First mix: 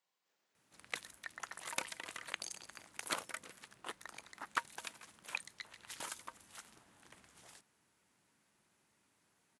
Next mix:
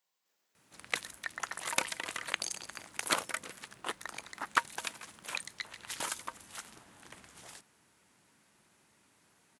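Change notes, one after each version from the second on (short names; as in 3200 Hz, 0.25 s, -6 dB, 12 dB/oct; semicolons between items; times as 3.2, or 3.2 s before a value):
speech: add high shelf 6300 Hz +10 dB; background +8.0 dB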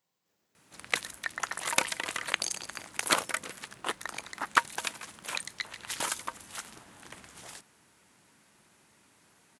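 speech: remove HPF 920 Hz 6 dB/oct; background +4.5 dB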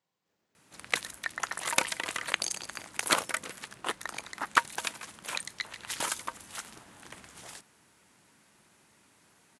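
speech: add high shelf 6300 Hz -10 dB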